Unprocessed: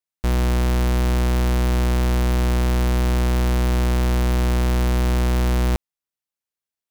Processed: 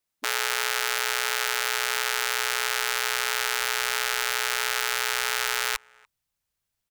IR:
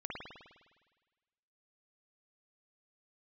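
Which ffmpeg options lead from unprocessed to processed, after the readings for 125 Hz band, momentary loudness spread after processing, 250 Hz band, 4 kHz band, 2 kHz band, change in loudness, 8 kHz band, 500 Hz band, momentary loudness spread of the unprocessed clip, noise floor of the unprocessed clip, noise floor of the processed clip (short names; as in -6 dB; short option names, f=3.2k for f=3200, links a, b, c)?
under -40 dB, 0 LU, under -35 dB, +7.5 dB, +7.5 dB, -4.0 dB, +7.5 dB, -8.5 dB, 0 LU, under -85 dBFS, -83 dBFS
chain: -filter_complex "[0:a]afftfilt=real='re*lt(hypot(re,im),0.0708)':imag='im*lt(hypot(re,im),0.0708)':win_size=1024:overlap=0.75,lowshelf=f=370:g=4,acrusher=bits=4:mode=log:mix=0:aa=0.000001,asubboost=boost=4.5:cutoff=130,asplit=2[a][b];[b]adelay=290,highpass=300,lowpass=3.4k,asoftclip=type=hard:threshold=-25.5dB,volume=-26dB[c];[a][c]amix=inputs=2:normalize=0,volume=7.5dB"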